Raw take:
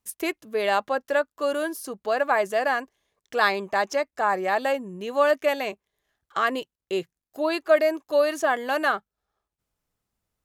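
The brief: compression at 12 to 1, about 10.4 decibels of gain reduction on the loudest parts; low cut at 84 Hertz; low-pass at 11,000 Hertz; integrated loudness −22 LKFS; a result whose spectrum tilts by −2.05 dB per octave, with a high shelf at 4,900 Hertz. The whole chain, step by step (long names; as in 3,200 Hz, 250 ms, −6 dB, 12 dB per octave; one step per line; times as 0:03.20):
high-pass filter 84 Hz
low-pass filter 11,000 Hz
high-shelf EQ 4,900 Hz −8.5 dB
downward compressor 12 to 1, threshold −24 dBFS
level +8.5 dB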